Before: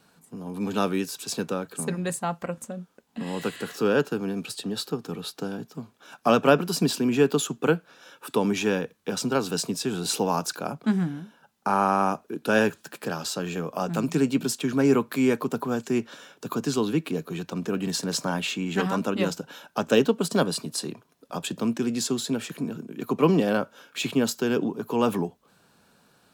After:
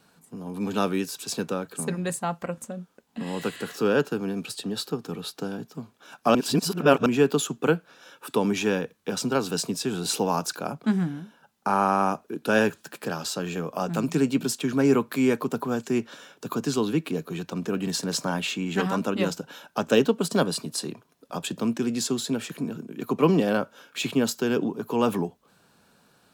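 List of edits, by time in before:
6.35–7.06 s: reverse

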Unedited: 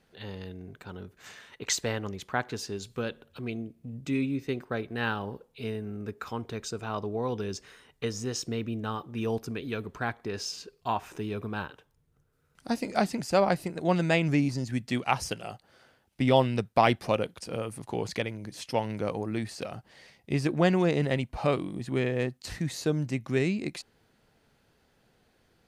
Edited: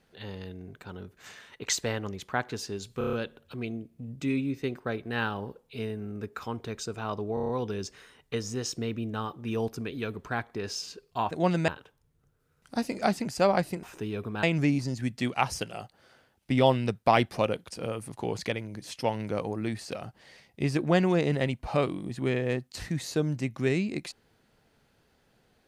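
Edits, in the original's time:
2.98 s: stutter 0.03 s, 6 plays
7.19 s: stutter 0.03 s, 6 plays
11.01–11.61 s: swap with 13.76–14.13 s

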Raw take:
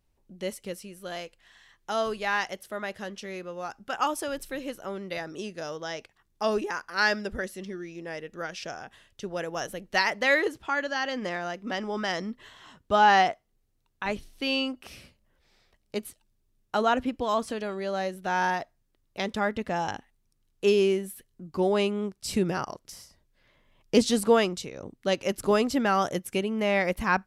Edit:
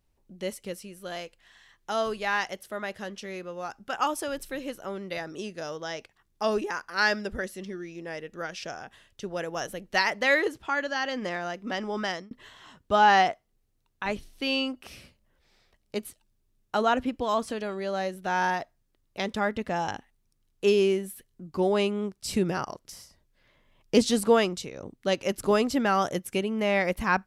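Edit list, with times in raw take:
12.06–12.31 s: fade out

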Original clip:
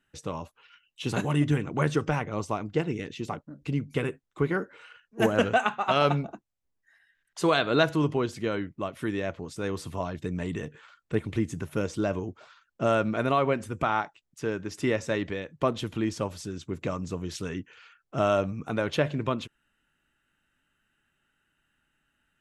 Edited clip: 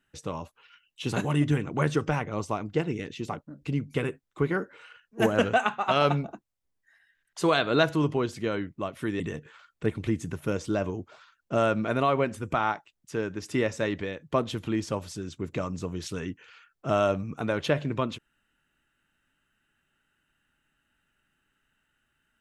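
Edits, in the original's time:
9.20–10.49 s: delete

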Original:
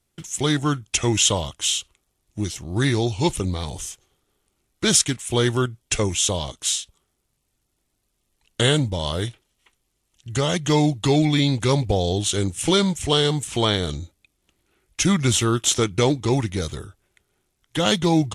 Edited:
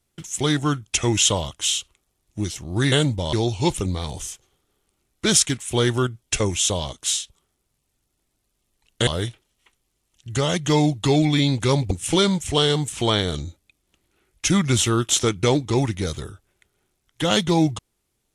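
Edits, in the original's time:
8.66–9.07 s: move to 2.92 s
11.91–12.46 s: delete

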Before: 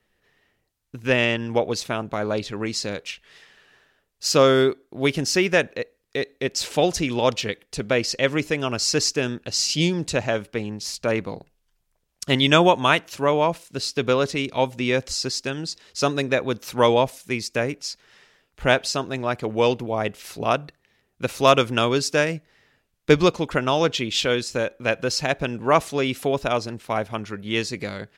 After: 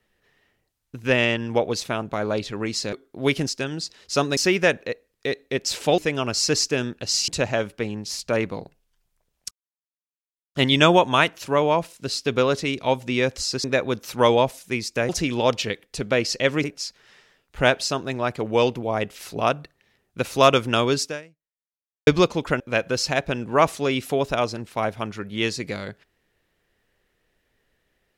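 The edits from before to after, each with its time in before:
2.93–4.71 s: delete
6.88–8.43 s: move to 17.68 s
9.73–10.03 s: delete
12.26 s: insert silence 1.04 s
15.35–16.23 s: move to 5.27 s
22.06–23.11 s: fade out exponential
23.64–24.73 s: delete

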